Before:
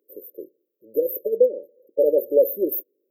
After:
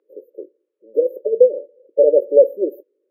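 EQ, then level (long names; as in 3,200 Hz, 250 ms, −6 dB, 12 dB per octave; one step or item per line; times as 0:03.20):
band-pass filter 480–2,300 Hz
+8.0 dB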